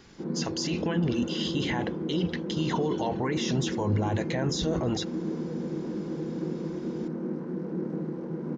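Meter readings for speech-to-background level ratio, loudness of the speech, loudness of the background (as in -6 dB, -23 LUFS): 3.0 dB, -30.5 LUFS, -33.5 LUFS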